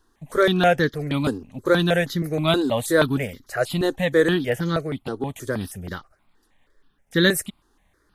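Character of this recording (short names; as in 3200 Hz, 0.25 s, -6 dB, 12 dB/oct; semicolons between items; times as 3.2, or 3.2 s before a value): notches that jump at a steady rate 6.3 Hz 600–2600 Hz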